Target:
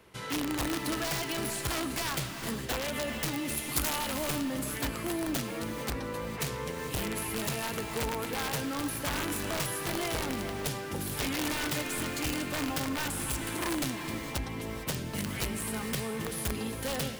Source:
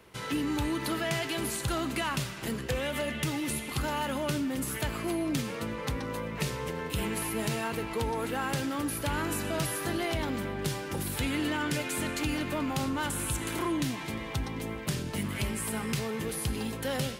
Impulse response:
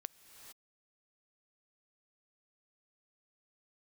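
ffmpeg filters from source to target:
-filter_complex "[0:a]aeval=exprs='(mod(15*val(0)+1,2)-1)/15':c=same,asettb=1/sr,asplit=3[s0][s1][s2];[s0]atrim=end=3.574[s3];[s1]atrim=start=3.57:end=3.97,asetpts=PTS-STARTPTS,afade=t=in:d=0.004:c=qsin,afade=t=out:st=0.396:d=0.004:c=qsin,aemphasis=mode=production:type=cd[s4];[s2]atrim=start=3.966[s5];[s3][s4]acrossfade=d=0.004:c1=hsin:c2=qsin[s6];[s6][s5]acrossfade=d=0.004:c1=qsin:c2=hsin[s7];[1:a]atrim=start_sample=2205[s8];[s7][s8]afir=irnorm=-1:irlink=0,volume=1.41"

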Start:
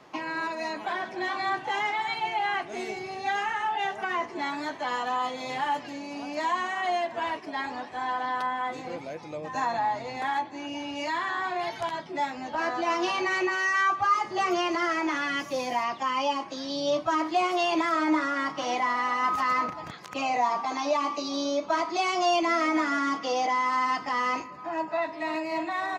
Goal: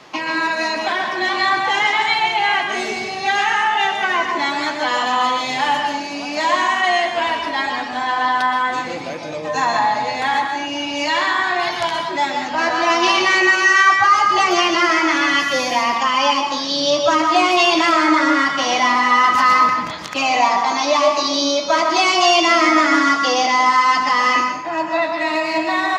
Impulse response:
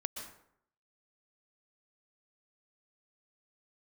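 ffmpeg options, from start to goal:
-filter_complex "[0:a]equalizer=f=4300:w=0.44:g=8[s0];[1:a]atrim=start_sample=2205[s1];[s0][s1]afir=irnorm=-1:irlink=0,volume=2.66"

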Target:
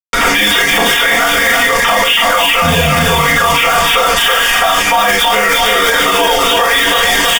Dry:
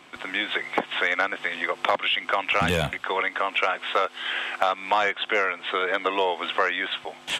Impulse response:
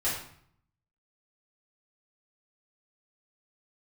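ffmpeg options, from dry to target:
-filter_complex "[0:a]equalizer=f=3500:w=3.3:g=4.5,aecho=1:1:325|650|975|1300|1625:0.562|0.219|0.0855|0.0334|0.013,acrusher=bits=4:mix=0:aa=0.5,equalizer=f=1100:w=2.9:g=4.5,bandreject=f=4000:w=7.1[s0];[1:a]atrim=start_sample=2205,afade=t=out:st=0.14:d=0.01,atrim=end_sample=6615[s1];[s0][s1]afir=irnorm=-1:irlink=0,areverse,acompressor=threshold=0.0708:ratio=6,areverse,aecho=1:1:4.3:0.76,acrossover=split=210|3000[s2][s3][s4];[s3]acompressor=threshold=0.0355:ratio=6[s5];[s2][s5][s4]amix=inputs=3:normalize=0,alimiter=level_in=22.4:limit=0.891:release=50:level=0:latency=1,volume=0.891"

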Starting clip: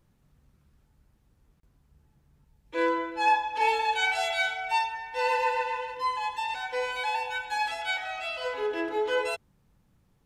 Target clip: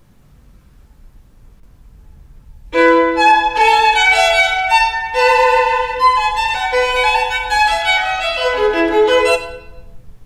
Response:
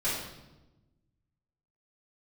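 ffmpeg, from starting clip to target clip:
-filter_complex "[0:a]asplit=2[s0][s1];[s1]asubboost=boost=8.5:cutoff=80[s2];[1:a]atrim=start_sample=2205[s3];[s2][s3]afir=irnorm=-1:irlink=0,volume=0.211[s4];[s0][s4]amix=inputs=2:normalize=0,alimiter=level_in=6.31:limit=0.891:release=50:level=0:latency=1,volume=0.891"

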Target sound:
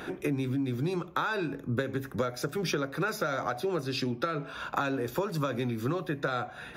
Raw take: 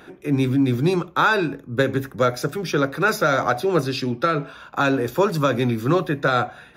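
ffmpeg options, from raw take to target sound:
-af "acompressor=threshold=0.0251:ratio=16,volume=1.78"

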